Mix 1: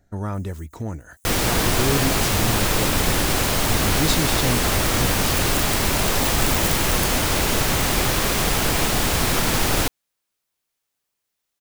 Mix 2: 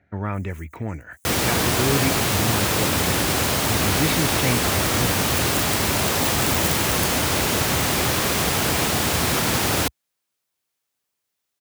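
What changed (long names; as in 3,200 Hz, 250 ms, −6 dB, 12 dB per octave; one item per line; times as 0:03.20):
speech: add low-pass with resonance 2,300 Hz, resonance Q 4.2
master: add high-pass filter 66 Hz 24 dB per octave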